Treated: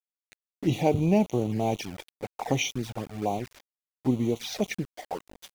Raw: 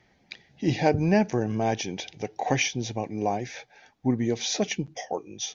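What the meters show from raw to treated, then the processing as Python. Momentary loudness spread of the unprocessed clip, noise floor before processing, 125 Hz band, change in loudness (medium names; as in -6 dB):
12 LU, -64 dBFS, -0.5 dB, -1.0 dB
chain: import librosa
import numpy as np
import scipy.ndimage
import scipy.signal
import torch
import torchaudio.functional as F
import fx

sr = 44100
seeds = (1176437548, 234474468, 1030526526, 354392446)

y = fx.env_lowpass(x, sr, base_hz=1400.0, full_db=-18.5)
y = np.where(np.abs(y) >= 10.0 ** (-35.0 / 20.0), y, 0.0)
y = fx.env_flanger(y, sr, rest_ms=10.0, full_db=-23.0)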